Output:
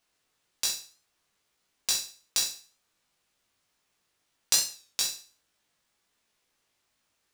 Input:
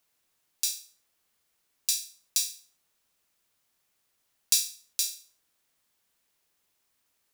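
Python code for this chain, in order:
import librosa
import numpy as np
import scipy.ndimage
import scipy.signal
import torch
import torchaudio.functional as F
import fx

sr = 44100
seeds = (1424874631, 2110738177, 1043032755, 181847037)

y = scipy.ndimage.median_filter(x, 3, mode='constant')
y = fx.room_early_taps(y, sr, ms=(19, 63), db=(-3.0, -11.0))
y = fx.record_warp(y, sr, rpm=33.33, depth_cents=100.0)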